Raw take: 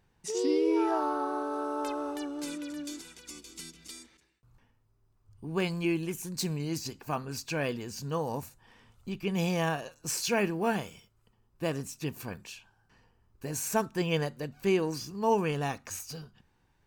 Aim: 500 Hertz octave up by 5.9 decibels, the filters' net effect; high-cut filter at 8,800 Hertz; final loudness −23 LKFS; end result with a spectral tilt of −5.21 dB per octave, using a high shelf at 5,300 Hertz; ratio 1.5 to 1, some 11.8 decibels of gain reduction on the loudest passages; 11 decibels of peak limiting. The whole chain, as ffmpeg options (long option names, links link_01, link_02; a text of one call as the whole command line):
ffmpeg -i in.wav -af "lowpass=8800,equalizer=frequency=500:width_type=o:gain=7.5,highshelf=frequency=5300:gain=-8.5,acompressor=threshold=-52dB:ratio=1.5,volume=20.5dB,alimiter=limit=-13dB:level=0:latency=1" out.wav